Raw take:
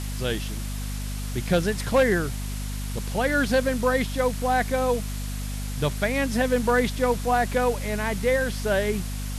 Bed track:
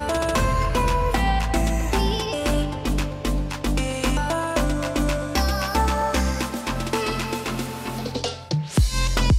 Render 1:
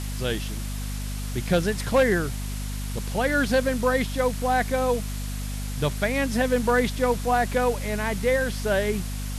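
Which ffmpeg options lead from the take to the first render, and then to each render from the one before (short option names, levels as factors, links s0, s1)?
-af anull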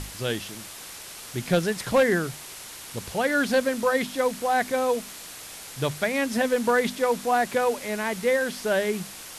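-af "bandreject=f=50:t=h:w=6,bandreject=f=100:t=h:w=6,bandreject=f=150:t=h:w=6,bandreject=f=200:t=h:w=6,bandreject=f=250:t=h:w=6"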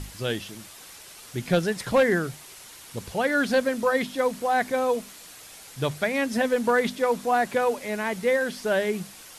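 -af "afftdn=nr=6:nf=-41"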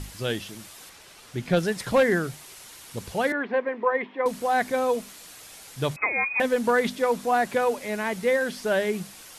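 -filter_complex "[0:a]asettb=1/sr,asplit=3[s0][s1][s2];[s0]atrim=end=0.894[s3];[s1]atrim=start=0.89:end=1.57,asetpts=PTS-STARTPTS,afade=t=in:d=0.004:c=qsin,afade=t=out:st=0.676:d=0.004:c=qsin,highshelf=f=6000:g=-9.5[s4];[s2]atrim=start=1.566[s5];[s3][s4]acrossfade=d=0.004:c1=hsin:c2=qsin[s6];[s6][s5]acrossfade=d=0.004:c1=qsin:c2=hsin,asettb=1/sr,asplit=3[s7][s8][s9];[s7]atrim=end=3.324[s10];[s8]atrim=start=3.32:end=4.26,asetpts=PTS-STARTPTS,afade=t=in:d=0.004:c=qsin,afade=t=out:st=0.936:d=0.004:c=qsin,highpass=f=250:w=0.5412,highpass=f=250:w=1.3066,equalizer=f=260:t=q:w=4:g=-7,equalizer=f=410:t=q:w=4:g=5,equalizer=f=600:t=q:w=4:g=-7,equalizer=f=990:t=q:w=4:g=6,equalizer=f=1400:t=q:w=4:g=-9,equalizer=f=2000:t=q:w=4:g=3,lowpass=f=2200:w=0.5412,lowpass=f=2200:w=1.3066[s11];[s9]atrim=start=4.256[s12];[s10][s11]acrossfade=d=0.004:c1=hsin:c2=qsin[s13];[s13][s12]acrossfade=d=0.004:c1=qsin:c2=hsin,asettb=1/sr,asplit=3[s14][s15][s16];[s14]atrim=end=5.964[s17];[s15]atrim=start=5.96:end=6.4,asetpts=PTS-STARTPTS,afade=t=in:d=0.004:c=qsin,afade=t=out:st=0.436:d=0.004:c=qsin,lowpass=f=2300:t=q:w=0.5098,lowpass=f=2300:t=q:w=0.6013,lowpass=f=2300:t=q:w=0.9,lowpass=f=2300:t=q:w=2.563,afreqshift=-2700[s18];[s16]atrim=start=6.396[s19];[s17][s18]acrossfade=d=0.004:c1=hsin:c2=qsin[s20];[s20][s19]acrossfade=d=0.004:c1=qsin:c2=hsin"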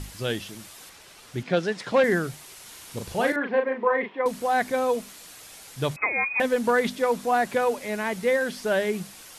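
-filter_complex "[0:a]asettb=1/sr,asplit=3[s0][s1][s2];[s0]atrim=end=1.434[s3];[s1]atrim=start=1.43:end=2.04,asetpts=PTS-STARTPTS,afade=t=in:d=0.004:c=qsin,afade=t=out:st=0.606:d=0.004:c=qsin,highpass=210,lowpass=5500[s4];[s2]atrim=start=2.036[s5];[s3][s4]acrossfade=d=0.004:c1=hsin:c2=qsin[s6];[s6][s5]acrossfade=d=0.004:c1=qsin:c2=hsin,asettb=1/sr,asplit=3[s7][s8][s9];[s7]atrim=end=2.624[s10];[s8]atrim=start=2.62:end=4.19,asetpts=PTS-STARTPTS,afade=t=in:d=0.004:c=qsin,afade=t=out:st=1.566:d=0.004:c=qsin,asplit=2[s11][s12];[s12]adelay=38,volume=0.562[s13];[s11][s13]amix=inputs=2:normalize=0,atrim=end_sample=69237[s14];[s9]atrim=start=4.186[s15];[s10][s14]acrossfade=d=0.004:c1=hsin:c2=qsin[s16];[s16][s15]acrossfade=d=0.004:c1=qsin:c2=hsin"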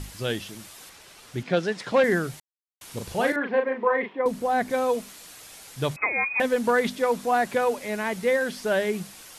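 -filter_complex "[0:a]asettb=1/sr,asplit=3[s0][s1][s2];[s0]atrim=end=4.134[s3];[s1]atrim=start=4.13:end=4.7,asetpts=PTS-STARTPTS,afade=t=in:d=0.004:c=qsin,afade=t=out:st=0.566:d=0.004:c=qsin,tiltshelf=f=640:g=4.5[s4];[s2]atrim=start=4.696[s5];[s3][s4]acrossfade=d=0.004:c1=hsin:c2=qsin[s6];[s6][s5]acrossfade=d=0.004:c1=qsin:c2=hsin,asplit=3[s7][s8][s9];[s7]atrim=end=2.4,asetpts=PTS-STARTPTS,afade=t=out:st=2.396:d=0.004:c=hsin[s10];[s8]atrim=start=2.4:end=2.81,asetpts=PTS-STARTPTS,volume=0[s11];[s9]atrim=start=2.81,asetpts=PTS-STARTPTS,afade=t=in:d=0.004:c=hsin[s12];[s10][s11][s12]concat=n=3:v=0:a=1"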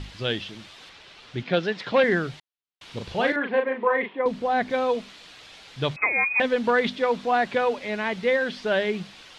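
-af "lowpass=f=3600:t=q:w=1.7"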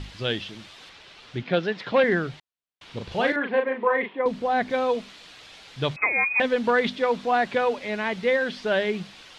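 -filter_complex "[0:a]asettb=1/sr,asplit=3[s0][s1][s2];[s0]atrim=end=1.384[s3];[s1]atrim=start=1.38:end=3.12,asetpts=PTS-STARTPTS,afade=t=in:d=0.004:c=qsin,afade=t=out:st=1.736:d=0.004:c=qsin,highshelf=f=5500:g=-7.5[s4];[s2]atrim=start=3.116[s5];[s3][s4]acrossfade=d=0.004:c1=hsin:c2=qsin[s6];[s6][s5]acrossfade=d=0.004:c1=qsin:c2=hsin"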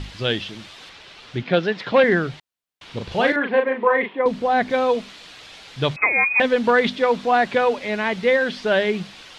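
-af "volume=1.68"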